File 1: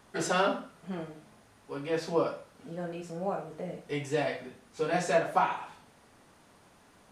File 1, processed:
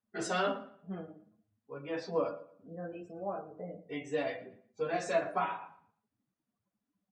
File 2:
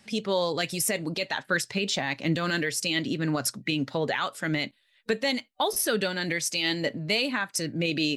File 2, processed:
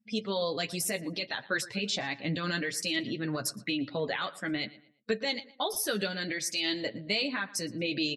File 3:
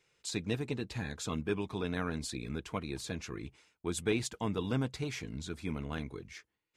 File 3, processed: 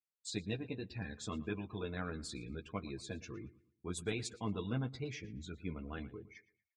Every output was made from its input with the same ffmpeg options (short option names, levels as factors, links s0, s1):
-filter_complex "[0:a]afftdn=nr=30:nf=-46,bandreject=f=890:w=12,adynamicequalizer=threshold=0.00501:dfrequency=4200:dqfactor=2:tfrequency=4200:tqfactor=2:attack=5:release=100:ratio=0.375:range=1.5:mode=boostabove:tftype=bell,flanger=delay=8.5:depth=2.4:regen=-18:speed=0.61:shape=triangular,asplit=2[s0][s1];[s1]adelay=115,lowpass=f=3500:p=1,volume=0.126,asplit=2[s2][s3];[s3]adelay=115,lowpass=f=3500:p=1,volume=0.35,asplit=2[s4][s5];[s5]adelay=115,lowpass=f=3500:p=1,volume=0.35[s6];[s2][s4][s6]amix=inputs=3:normalize=0[s7];[s0][s7]amix=inputs=2:normalize=0,volume=0.841"